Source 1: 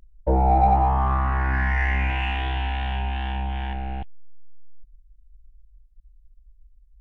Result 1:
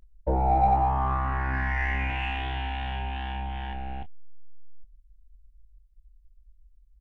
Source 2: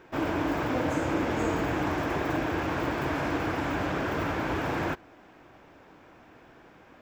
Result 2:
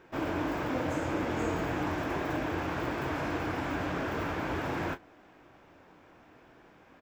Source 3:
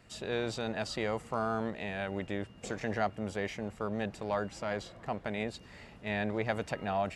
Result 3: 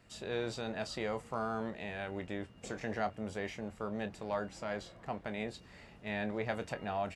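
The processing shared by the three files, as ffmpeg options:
ffmpeg -i in.wav -af "aecho=1:1:23|34:0.266|0.141,volume=-4dB" out.wav

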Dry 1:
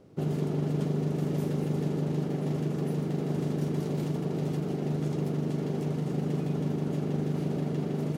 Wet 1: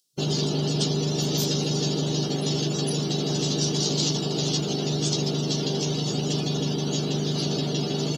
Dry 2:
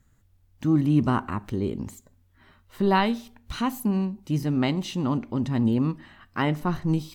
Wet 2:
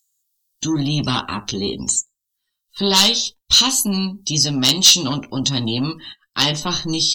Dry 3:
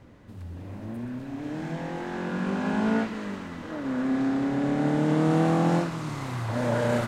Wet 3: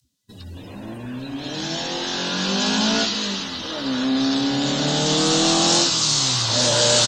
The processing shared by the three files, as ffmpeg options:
ffmpeg -i in.wav -filter_complex "[0:a]acrossover=split=240|1400[link_01][link_02][link_03];[link_03]acompressor=mode=upward:threshold=-53dB:ratio=2.5[link_04];[link_01][link_02][link_04]amix=inputs=3:normalize=0,aecho=1:1:15|61:0.562|0.126,agate=range=-12dB:threshold=-46dB:ratio=16:detection=peak,highshelf=frequency=2900:gain=8,acrossover=split=6900[link_05][link_06];[link_06]acompressor=threshold=-60dB:ratio=4:attack=1:release=60[link_07];[link_05][link_07]amix=inputs=2:normalize=0,lowshelf=frequency=400:gain=-4.5,asoftclip=type=tanh:threshold=-19.5dB,afftdn=noise_reduction=30:noise_floor=-50,aexciter=amount=9.3:drive=7:freq=3200,volume=9.5dB,asoftclip=hard,volume=-9.5dB,volume=5.5dB" out.wav

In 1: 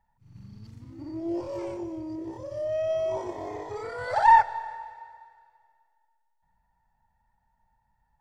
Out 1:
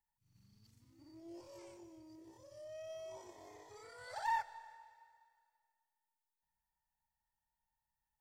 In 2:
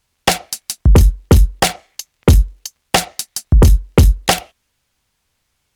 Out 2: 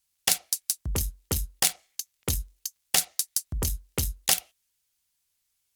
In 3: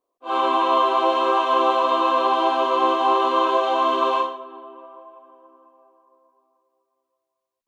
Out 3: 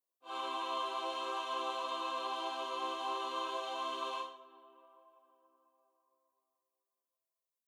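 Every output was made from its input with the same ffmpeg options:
ffmpeg -i in.wav -af "crystalizer=i=6.5:c=0,aeval=exprs='7.5*(cos(1*acos(clip(val(0)/7.5,-1,1)))-cos(1*PI/2))+0.422*(cos(7*acos(clip(val(0)/7.5,-1,1)))-cos(7*PI/2))':channel_layout=same,volume=-18dB" out.wav

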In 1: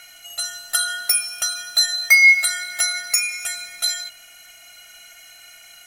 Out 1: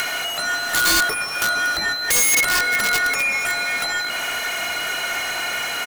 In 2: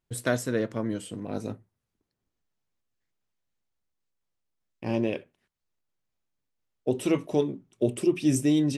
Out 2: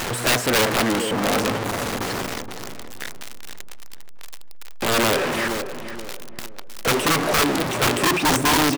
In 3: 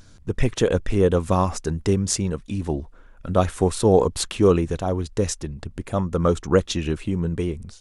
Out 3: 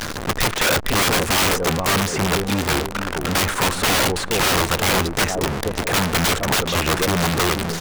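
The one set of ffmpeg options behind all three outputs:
ffmpeg -i in.wav -filter_complex "[0:a]aeval=exprs='val(0)+0.5*0.075*sgn(val(0))':channel_layout=same,asplit=2[link_01][link_02];[link_02]highpass=frequency=720:poles=1,volume=16dB,asoftclip=type=tanh:threshold=-0.5dB[link_03];[link_01][link_03]amix=inputs=2:normalize=0,lowpass=frequency=6200:poles=1,volume=-6dB,asplit=2[link_04][link_05];[link_05]adelay=473,lowpass=frequency=1000:poles=1,volume=-9dB,asplit=2[link_06][link_07];[link_07]adelay=473,lowpass=frequency=1000:poles=1,volume=0.38,asplit=2[link_08][link_09];[link_09]adelay=473,lowpass=frequency=1000:poles=1,volume=0.38,asplit=2[link_10][link_11];[link_11]adelay=473,lowpass=frequency=1000:poles=1,volume=0.38[link_12];[link_04][link_06][link_08][link_10][link_12]amix=inputs=5:normalize=0,acrossover=split=2000[link_13][link_14];[link_14]acompressor=threshold=-30dB:ratio=6[link_15];[link_13][link_15]amix=inputs=2:normalize=0,aeval=exprs='(mod(4.22*val(0)+1,2)-1)/4.22':channel_layout=same" out.wav

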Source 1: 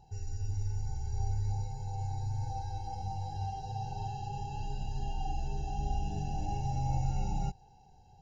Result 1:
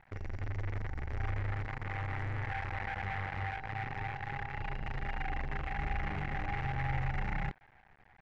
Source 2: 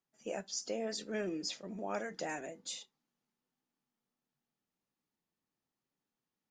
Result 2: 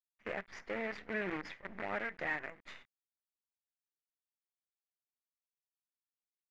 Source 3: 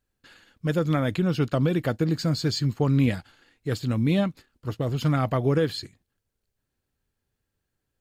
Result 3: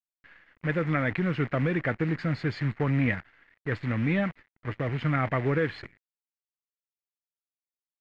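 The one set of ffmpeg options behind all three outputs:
ffmpeg -i in.wav -af "asoftclip=type=tanh:threshold=-14dB,acrusher=bits=7:dc=4:mix=0:aa=0.000001,lowpass=frequency=2000:width_type=q:width=4.2,volume=-3dB" out.wav

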